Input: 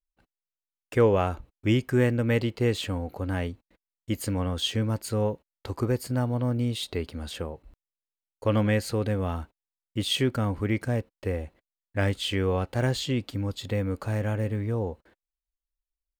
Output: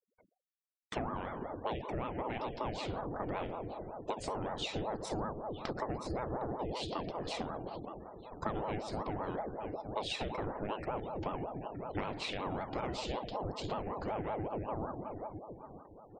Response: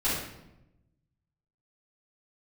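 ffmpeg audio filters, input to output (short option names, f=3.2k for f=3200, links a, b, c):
-filter_complex "[0:a]dynaudnorm=f=330:g=21:m=5.5dB,asplit=2[a][b];[b]adelay=917,lowpass=f=2.1k:p=1,volume=-23dB,asplit=2[c][d];[d]adelay=917,lowpass=f=2.1k:p=1,volume=0.44,asplit=2[e][f];[f]adelay=917,lowpass=f=2.1k:p=1,volume=0.44[g];[a][c][e][g]amix=inputs=4:normalize=0,asplit=2[h][i];[1:a]atrim=start_sample=2205,highshelf=f=8.4k:g=10.5[j];[i][j]afir=irnorm=-1:irlink=0,volume=-17.5dB[k];[h][k]amix=inputs=2:normalize=0,acompressor=threshold=-33dB:ratio=12,lowpass=f=7.3k:w=0.5412,lowpass=f=7.3k:w=1.3066,afftfilt=real='re*gte(hypot(re,im),0.00224)':imag='im*gte(hypot(re,im),0.00224)':win_size=1024:overlap=0.75,aeval=exprs='val(0)*sin(2*PI*480*n/s+480*0.6/5.3*sin(2*PI*5.3*n/s))':c=same,volume=1dB"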